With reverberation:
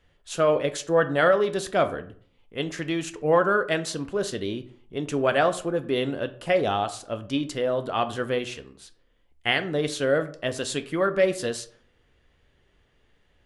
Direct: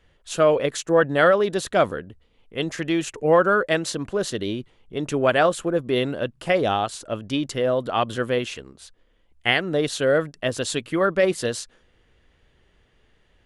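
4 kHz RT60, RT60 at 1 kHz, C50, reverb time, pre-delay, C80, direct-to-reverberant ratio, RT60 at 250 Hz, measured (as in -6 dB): 0.30 s, 0.50 s, 15.0 dB, 0.50 s, 5 ms, 19.5 dB, 9.0 dB, 0.60 s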